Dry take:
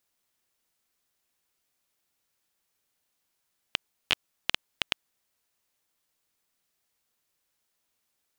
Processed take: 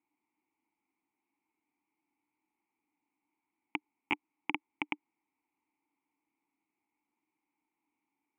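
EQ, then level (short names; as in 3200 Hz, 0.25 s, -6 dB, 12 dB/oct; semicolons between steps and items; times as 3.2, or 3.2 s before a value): vowel filter u; Butterworth band-stop 4400 Hz, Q 0.78; +14.0 dB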